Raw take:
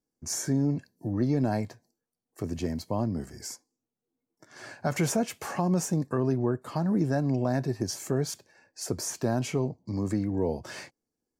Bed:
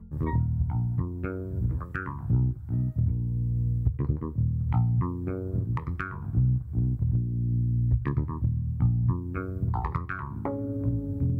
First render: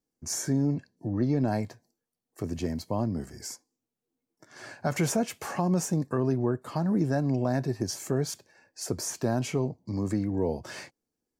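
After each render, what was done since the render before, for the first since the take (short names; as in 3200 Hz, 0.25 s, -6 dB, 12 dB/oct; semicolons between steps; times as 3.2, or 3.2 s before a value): 0.75–1.48 air absorption 58 m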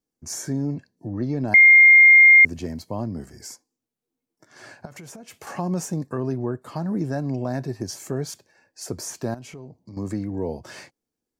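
1.54–2.45 bleep 2120 Hz -7.5 dBFS; 4.85–5.47 compressor 20:1, threshold -37 dBFS; 9.34–9.97 compressor 3:1, threshold -40 dBFS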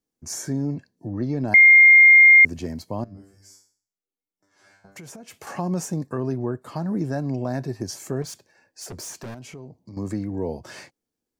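3.04–4.96 resonator 98 Hz, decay 0.47 s, mix 100%; 8.22–9.48 overloaded stage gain 32.5 dB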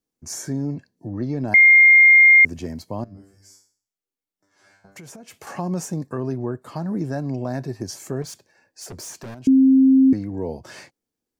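1.37–2.79 notch 4300 Hz, Q 16; 9.47–10.13 bleep 265 Hz -10 dBFS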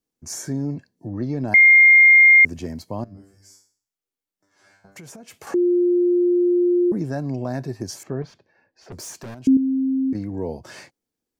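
5.54–6.92 bleep 353 Hz -14.5 dBFS; 8.03–8.92 air absorption 270 m; 9.57–10.15 gain -8 dB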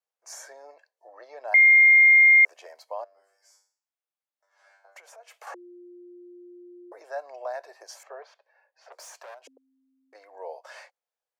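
steep high-pass 540 Hz 48 dB/oct; high shelf 3000 Hz -12 dB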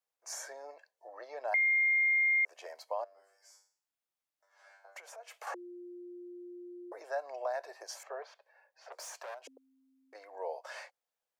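limiter -17.5 dBFS, peak gain reduction 6 dB; compressor 2:1, threshold -32 dBFS, peak gain reduction 7 dB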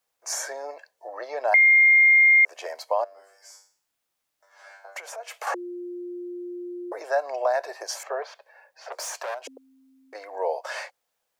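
gain +12 dB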